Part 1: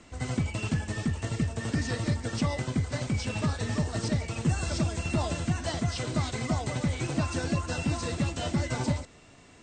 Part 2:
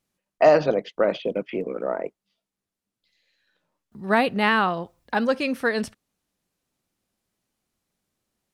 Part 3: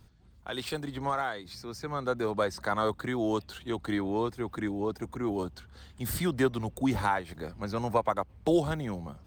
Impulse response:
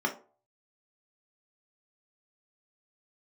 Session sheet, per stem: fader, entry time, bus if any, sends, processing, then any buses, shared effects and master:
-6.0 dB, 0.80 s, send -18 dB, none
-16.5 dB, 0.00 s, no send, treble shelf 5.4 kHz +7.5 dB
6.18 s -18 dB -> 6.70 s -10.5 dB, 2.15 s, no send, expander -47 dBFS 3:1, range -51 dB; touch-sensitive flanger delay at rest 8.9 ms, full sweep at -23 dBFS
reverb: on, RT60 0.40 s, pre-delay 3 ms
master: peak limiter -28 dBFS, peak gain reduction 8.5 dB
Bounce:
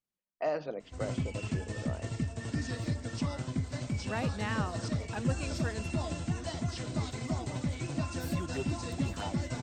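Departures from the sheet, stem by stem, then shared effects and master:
stem 2: missing treble shelf 5.4 kHz +7.5 dB; master: missing peak limiter -28 dBFS, peak gain reduction 8.5 dB

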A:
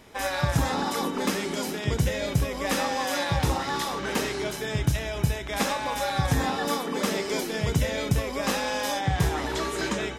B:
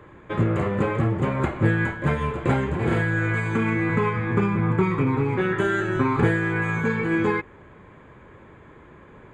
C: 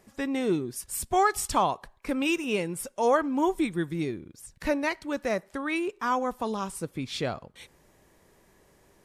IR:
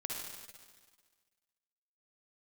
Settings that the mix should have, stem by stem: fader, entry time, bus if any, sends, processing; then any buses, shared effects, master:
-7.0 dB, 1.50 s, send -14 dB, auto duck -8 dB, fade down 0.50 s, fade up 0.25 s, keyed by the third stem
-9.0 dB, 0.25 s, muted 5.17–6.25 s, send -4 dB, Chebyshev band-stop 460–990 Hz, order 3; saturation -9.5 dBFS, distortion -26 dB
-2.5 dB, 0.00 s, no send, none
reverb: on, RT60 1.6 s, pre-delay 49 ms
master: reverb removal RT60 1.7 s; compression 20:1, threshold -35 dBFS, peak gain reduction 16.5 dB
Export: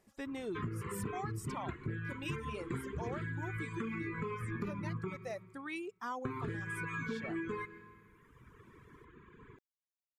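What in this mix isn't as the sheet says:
stem A: muted; stem C -2.5 dB -> -11.0 dB

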